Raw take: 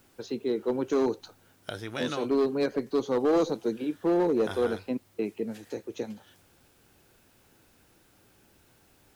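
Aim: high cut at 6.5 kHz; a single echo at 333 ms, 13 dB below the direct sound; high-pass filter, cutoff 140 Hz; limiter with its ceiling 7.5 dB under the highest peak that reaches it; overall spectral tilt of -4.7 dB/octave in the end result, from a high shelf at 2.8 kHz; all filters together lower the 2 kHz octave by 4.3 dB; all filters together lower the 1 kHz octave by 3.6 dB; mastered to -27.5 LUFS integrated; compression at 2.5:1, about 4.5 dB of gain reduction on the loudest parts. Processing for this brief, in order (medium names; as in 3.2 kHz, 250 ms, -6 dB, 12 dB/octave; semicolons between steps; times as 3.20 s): high-pass 140 Hz; low-pass 6.5 kHz; peaking EQ 1 kHz -4 dB; peaking EQ 2 kHz -6 dB; treble shelf 2.8 kHz +4.5 dB; compression 2.5:1, threshold -28 dBFS; peak limiter -27.5 dBFS; delay 333 ms -13 dB; trim +9.5 dB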